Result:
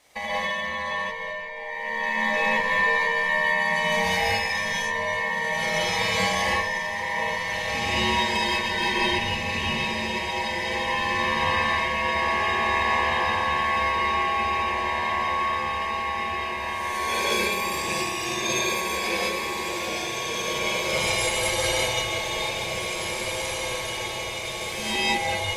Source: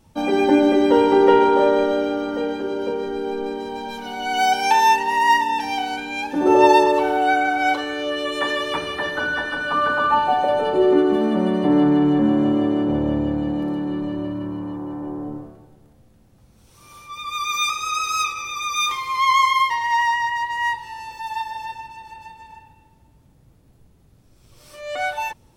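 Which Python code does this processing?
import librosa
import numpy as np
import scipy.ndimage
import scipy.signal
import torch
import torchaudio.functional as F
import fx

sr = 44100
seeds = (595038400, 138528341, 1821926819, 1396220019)

y = scipy.signal.sosfilt(scipy.signal.butter(2, 770.0, 'highpass', fs=sr, output='sos'), x)
y = fx.over_compress(y, sr, threshold_db=-33.0, ratio=-1.0)
y = fx.formant_shift(y, sr, semitones=-3)
y = y * np.sin(2.0 * np.pi * 1400.0 * np.arange(len(y)) / sr)
y = fx.echo_diffused(y, sr, ms=1958, feedback_pct=71, wet_db=-5)
y = fx.rev_gated(y, sr, seeds[0], gate_ms=230, shape='rising', drr_db=-7.0)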